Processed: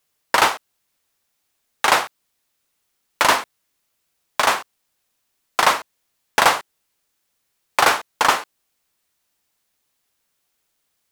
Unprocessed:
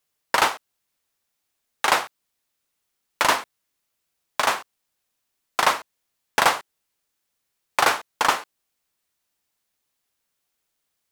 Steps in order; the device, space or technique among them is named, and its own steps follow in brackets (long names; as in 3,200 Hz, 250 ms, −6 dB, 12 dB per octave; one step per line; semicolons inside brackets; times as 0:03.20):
parallel distortion (in parallel at −7 dB: hard clipping −21 dBFS, distortion −5 dB)
on the sum: level +2 dB